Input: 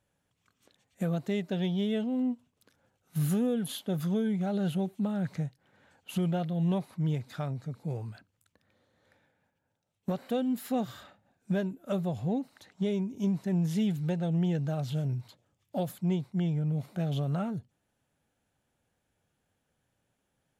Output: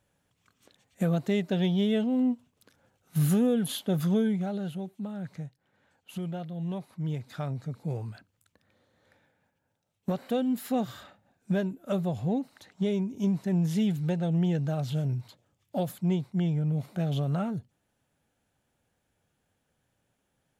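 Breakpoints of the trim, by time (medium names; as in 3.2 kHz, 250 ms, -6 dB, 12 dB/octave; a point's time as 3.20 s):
4.22 s +4 dB
4.71 s -5.5 dB
6.73 s -5.5 dB
7.58 s +2 dB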